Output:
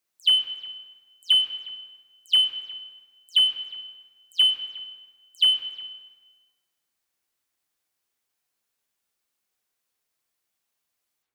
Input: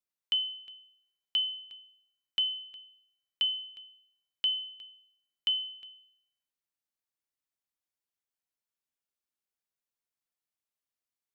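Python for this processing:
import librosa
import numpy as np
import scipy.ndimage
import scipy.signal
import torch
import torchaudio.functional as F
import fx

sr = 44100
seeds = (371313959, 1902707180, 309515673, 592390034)

p1 = fx.spec_delay(x, sr, highs='early', ms=123)
p2 = fx.low_shelf(p1, sr, hz=250.0, db=-4.5)
p3 = fx.rev_plate(p2, sr, seeds[0], rt60_s=1.5, hf_ratio=0.7, predelay_ms=0, drr_db=4.5)
p4 = np.clip(p3, -10.0 ** (-32.5 / 20.0), 10.0 ** (-32.5 / 20.0))
p5 = p3 + (p4 * librosa.db_to_amplitude(-9.0))
y = p5 * librosa.db_to_amplitude(8.5)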